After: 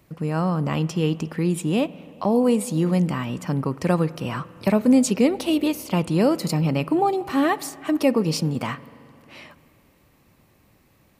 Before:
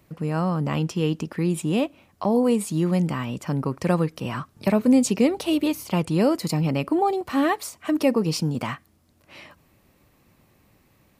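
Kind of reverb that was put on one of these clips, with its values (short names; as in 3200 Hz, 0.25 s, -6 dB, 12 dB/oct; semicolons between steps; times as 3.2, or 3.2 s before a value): spring tank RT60 2.8 s, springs 44/50 ms, chirp 60 ms, DRR 17.5 dB; gain +1 dB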